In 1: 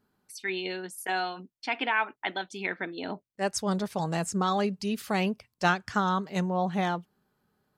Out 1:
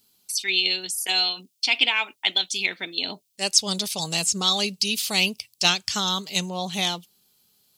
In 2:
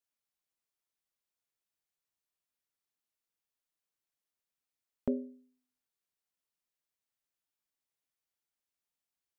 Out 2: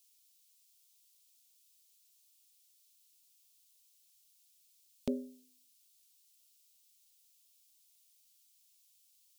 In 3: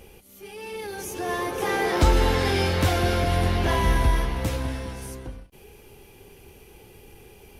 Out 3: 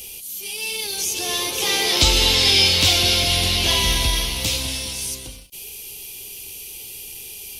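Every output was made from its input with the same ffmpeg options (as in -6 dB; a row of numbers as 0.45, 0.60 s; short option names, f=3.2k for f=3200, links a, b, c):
-filter_complex "[0:a]acrossover=split=5500[a][b];[b]acompressor=threshold=-50dB:ratio=4:attack=1:release=60[c];[a][c]amix=inputs=2:normalize=0,aexciter=amount=10.9:drive=6.3:freq=2.5k,volume=-2.5dB"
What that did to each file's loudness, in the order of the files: +7.5, -4.0, +7.0 LU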